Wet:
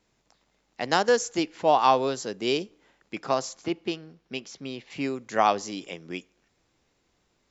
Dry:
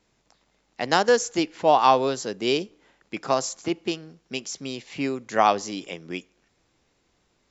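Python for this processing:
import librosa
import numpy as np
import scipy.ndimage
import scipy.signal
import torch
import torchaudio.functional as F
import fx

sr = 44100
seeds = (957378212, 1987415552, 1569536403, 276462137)

y = fx.lowpass(x, sr, hz=fx.line((3.2, 6600.0), (4.89, 3600.0)), slope=12, at=(3.2, 4.89), fade=0.02)
y = y * librosa.db_to_amplitude(-2.5)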